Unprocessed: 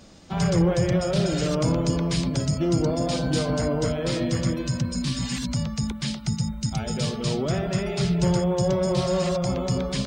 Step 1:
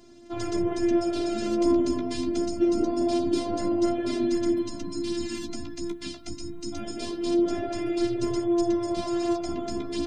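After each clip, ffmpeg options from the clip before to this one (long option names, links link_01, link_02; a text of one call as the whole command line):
ffmpeg -i in.wav -af "afftfilt=real='hypot(re,im)*cos(PI*b)':imag='0':win_size=512:overlap=0.75,flanger=delay=7.6:depth=8.4:regen=29:speed=0.24:shape=triangular,equalizer=frequency=210:width_type=o:width=2.1:gain=14" out.wav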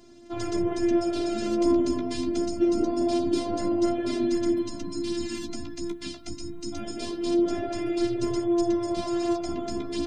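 ffmpeg -i in.wav -af anull out.wav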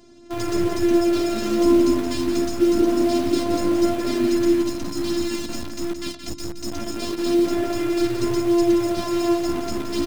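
ffmpeg -i in.wav -filter_complex "[0:a]asplit=2[link_01][link_02];[link_02]acrusher=bits=4:mix=0:aa=0.000001,volume=-8dB[link_03];[link_01][link_03]amix=inputs=2:normalize=0,aecho=1:1:172:0.398,volume=2dB" out.wav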